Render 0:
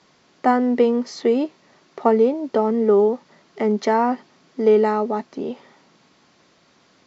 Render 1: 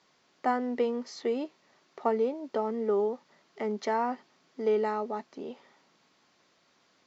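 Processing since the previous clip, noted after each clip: low shelf 340 Hz -7.5 dB; gain -8.5 dB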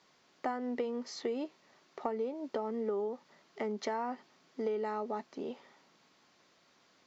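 compressor 5:1, threshold -32 dBFS, peak gain reduction 10.5 dB

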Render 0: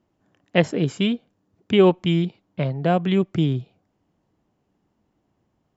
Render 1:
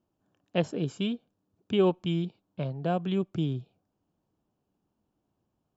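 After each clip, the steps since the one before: bell 2000 Hz -13.5 dB 0.25 oct; gain -8.5 dB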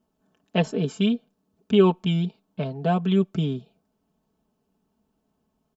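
comb 4.6 ms, depth 77%; gain +4 dB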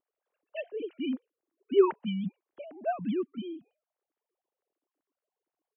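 sine-wave speech; gain -8 dB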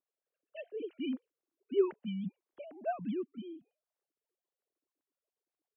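rotary speaker horn 0.65 Hz, later 8 Hz, at 3.78; gain -3.5 dB

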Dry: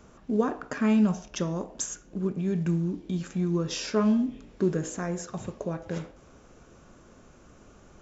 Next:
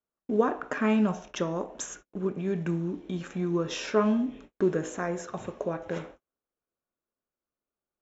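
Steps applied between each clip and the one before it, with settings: tone controls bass -10 dB, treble -9 dB; gate -50 dBFS, range -41 dB; notch 4700 Hz, Q 7.2; gain +3.5 dB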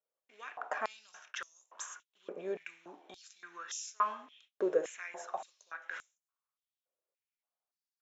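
stepped high-pass 3.5 Hz 520–6800 Hz; gain -7.5 dB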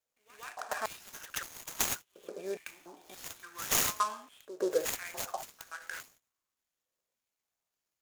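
synth low-pass 6900 Hz, resonance Q 9.9; pre-echo 0.128 s -14 dB; noise-modulated delay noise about 5400 Hz, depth 0.031 ms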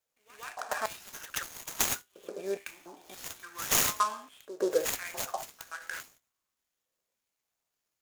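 resonator 66 Hz, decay 0.22 s, harmonics all, mix 40%; gain +5 dB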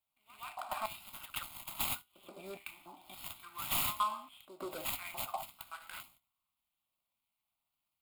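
soft clip -24.5 dBFS, distortion -11 dB; fixed phaser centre 1700 Hz, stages 6

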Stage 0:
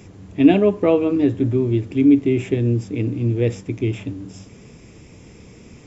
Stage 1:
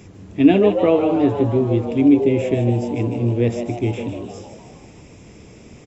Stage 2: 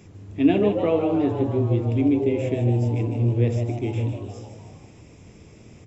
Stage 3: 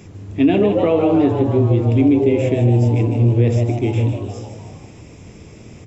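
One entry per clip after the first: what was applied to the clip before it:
frequency-shifting echo 0.153 s, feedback 52%, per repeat +120 Hz, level -8.5 dB
on a send at -12 dB: bell 110 Hz +11 dB 0.9 oct + reverb RT60 0.65 s, pre-delay 12 ms; on the sum: gain -6 dB
maximiser +12.5 dB; gain -5 dB

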